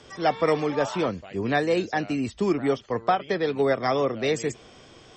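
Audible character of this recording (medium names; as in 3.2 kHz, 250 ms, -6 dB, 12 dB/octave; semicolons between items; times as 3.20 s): noise floor -51 dBFS; spectral tilt -4.5 dB/octave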